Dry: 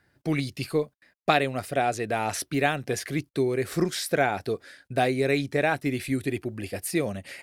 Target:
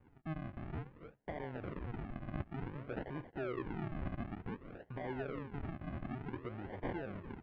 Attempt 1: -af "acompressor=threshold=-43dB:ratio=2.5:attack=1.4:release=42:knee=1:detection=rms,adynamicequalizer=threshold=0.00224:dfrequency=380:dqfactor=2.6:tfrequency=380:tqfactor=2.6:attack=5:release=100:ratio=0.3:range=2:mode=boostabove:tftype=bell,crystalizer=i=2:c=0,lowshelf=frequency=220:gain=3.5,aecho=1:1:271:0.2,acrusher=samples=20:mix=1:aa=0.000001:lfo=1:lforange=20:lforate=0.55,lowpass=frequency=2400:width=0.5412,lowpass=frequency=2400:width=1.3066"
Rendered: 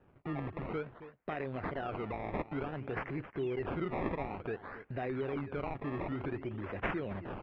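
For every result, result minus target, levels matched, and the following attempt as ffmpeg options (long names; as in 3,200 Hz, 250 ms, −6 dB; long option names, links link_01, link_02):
sample-and-hold swept by an LFO: distortion −12 dB; downward compressor: peak gain reduction −5 dB
-af "acompressor=threshold=-43dB:ratio=2.5:attack=1.4:release=42:knee=1:detection=rms,adynamicequalizer=threshold=0.00224:dfrequency=380:dqfactor=2.6:tfrequency=380:tqfactor=2.6:attack=5:release=100:ratio=0.3:range=2:mode=boostabove:tftype=bell,crystalizer=i=2:c=0,lowshelf=frequency=220:gain=3.5,aecho=1:1:271:0.2,acrusher=samples=65:mix=1:aa=0.000001:lfo=1:lforange=65:lforate=0.55,lowpass=frequency=2400:width=0.5412,lowpass=frequency=2400:width=1.3066"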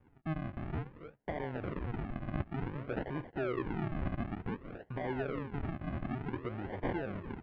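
downward compressor: peak gain reduction −5 dB
-af "acompressor=threshold=-51dB:ratio=2.5:attack=1.4:release=42:knee=1:detection=rms,adynamicequalizer=threshold=0.00224:dfrequency=380:dqfactor=2.6:tfrequency=380:tqfactor=2.6:attack=5:release=100:ratio=0.3:range=2:mode=boostabove:tftype=bell,crystalizer=i=2:c=0,lowshelf=frequency=220:gain=3.5,aecho=1:1:271:0.2,acrusher=samples=65:mix=1:aa=0.000001:lfo=1:lforange=65:lforate=0.55,lowpass=frequency=2400:width=0.5412,lowpass=frequency=2400:width=1.3066"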